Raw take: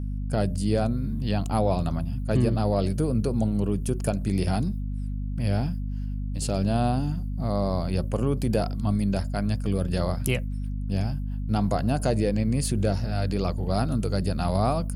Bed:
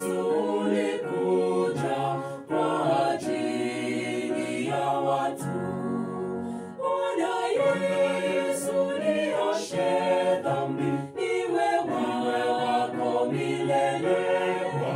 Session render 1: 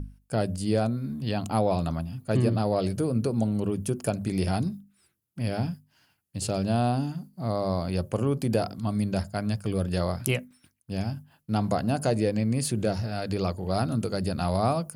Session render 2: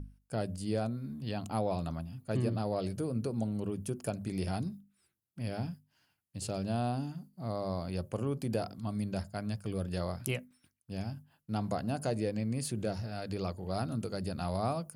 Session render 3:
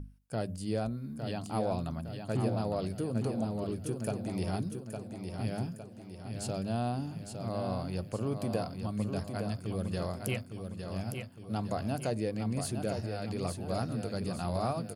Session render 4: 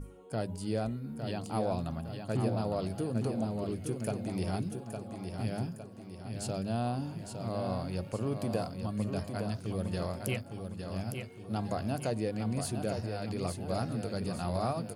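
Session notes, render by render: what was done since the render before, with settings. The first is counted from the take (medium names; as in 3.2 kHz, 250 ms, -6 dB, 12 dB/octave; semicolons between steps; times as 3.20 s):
hum notches 50/100/150/200/250 Hz
trim -8 dB
feedback delay 859 ms, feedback 49%, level -6.5 dB
add bed -28 dB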